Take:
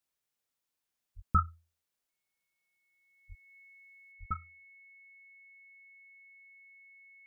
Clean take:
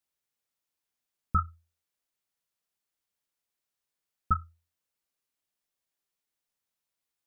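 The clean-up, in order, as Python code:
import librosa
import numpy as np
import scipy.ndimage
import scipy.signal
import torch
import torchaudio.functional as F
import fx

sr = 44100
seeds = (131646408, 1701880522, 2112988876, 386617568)

y = fx.notch(x, sr, hz=2200.0, q=30.0)
y = fx.fix_deplosive(y, sr, at_s=(1.15, 3.28, 4.19))
y = fx.gain(y, sr, db=fx.steps((0.0, 0.0), (4.12, 9.5)))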